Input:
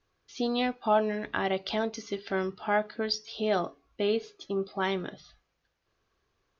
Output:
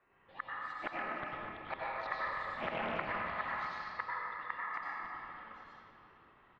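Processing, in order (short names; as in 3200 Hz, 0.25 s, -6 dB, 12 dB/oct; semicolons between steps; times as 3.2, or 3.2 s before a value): HPF 150 Hz 6 dB/oct; resonant high shelf 2900 Hz -6.5 dB, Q 3; compressor 2:1, threshold -41 dBFS, peak gain reduction 12 dB; flipped gate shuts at -30 dBFS, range -34 dB; LFO notch sine 0.56 Hz 860–2900 Hz; ring modulator 1500 Hz; air absorption 400 m; bands offset in time lows, highs 0.33 s, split 3300 Hz; reverb RT60 3.3 s, pre-delay 85 ms, DRR -7 dB; Doppler distortion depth 0.4 ms; gain +12 dB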